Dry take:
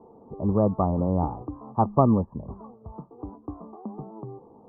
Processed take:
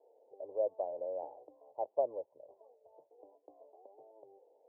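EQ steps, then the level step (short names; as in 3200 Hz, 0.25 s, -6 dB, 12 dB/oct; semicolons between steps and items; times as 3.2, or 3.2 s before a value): ladder band-pass 630 Hz, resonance 65%; fixed phaser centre 500 Hz, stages 4; -3.5 dB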